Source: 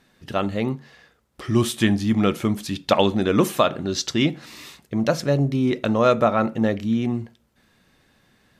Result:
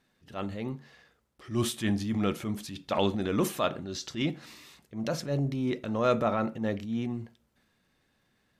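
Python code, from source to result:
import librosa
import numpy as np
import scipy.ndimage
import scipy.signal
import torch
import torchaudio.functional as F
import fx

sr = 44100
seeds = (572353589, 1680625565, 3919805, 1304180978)

y = fx.transient(x, sr, attack_db=-6, sustain_db=5)
y = fx.upward_expand(y, sr, threshold_db=-26.0, expansion=1.5)
y = F.gain(torch.from_numpy(y), -6.0).numpy()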